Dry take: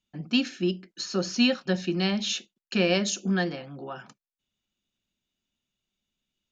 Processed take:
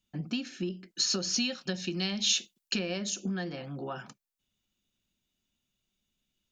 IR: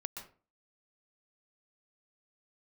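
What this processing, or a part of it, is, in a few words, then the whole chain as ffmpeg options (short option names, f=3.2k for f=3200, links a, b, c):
ASMR close-microphone chain: -filter_complex "[0:a]lowshelf=f=210:g=4.5,acompressor=threshold=-31dB:ratio=6,highshelf=f=6.6k:g=6,asettb=1/sr,asplit=3[a][b][c];[a]atrim=end=0.694[d];[b]atrim=start=0.69:end=2.79,asetpts=PTS-STARTPTS,afade=t=in:d=0.004:c=qsin,afade=t=out:st=2.096:d=0.004:c=qsin,adynamicequalizer=threshold=0.00282:dfrequency=2200:dqfactor=0.7:tfrequency=2200:tqfactor=0.7:attack=5:release=100:ratio=0.375:range=4:mode=boostabove:tftype=highshelf[e];[c]atrim=start=2.786[f];[d][e]acrossfade=d=0.004:c1=hsin:c2=qsin[g];[g][f]acrossfade=d=0.004:c1=qsin:c2=hsin"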